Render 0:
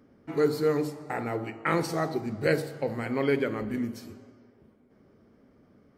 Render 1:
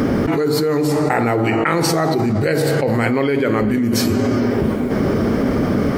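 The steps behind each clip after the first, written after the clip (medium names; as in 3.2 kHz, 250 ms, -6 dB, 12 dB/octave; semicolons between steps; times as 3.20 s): level flattener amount 100%; trim +2.5 dB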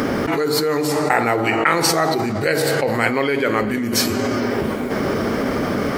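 bass shelf 410 Hz -11.5 dB; in parallel at -10.5 dB: crossover distortion -37.5 dBFS; on the sum: trim +1.5 dB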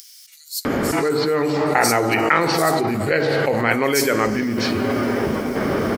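bands offset in time highs, lows 650 ms, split 4.7 kHz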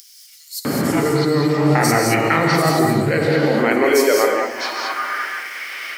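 high-pass sweep 140 Hz -> 2.3 kHz, 3.03–5.52 s; gated-style reverb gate 240 ms rising, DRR 1 dB; trim -2 dB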